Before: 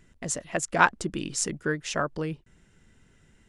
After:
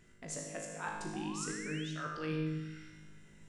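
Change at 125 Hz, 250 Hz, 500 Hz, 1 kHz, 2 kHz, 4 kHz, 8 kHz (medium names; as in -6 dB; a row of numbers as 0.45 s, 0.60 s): -4.5 dB, -5.5 dB, -11.0 dB, -15.5 dB, -15.0 dB, -9.5 dB, -12.0 dB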